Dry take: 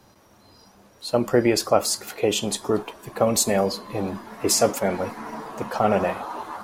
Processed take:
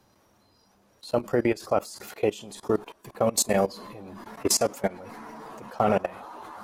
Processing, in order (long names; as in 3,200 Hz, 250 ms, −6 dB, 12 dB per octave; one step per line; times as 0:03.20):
output level in coarse steps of 21 dB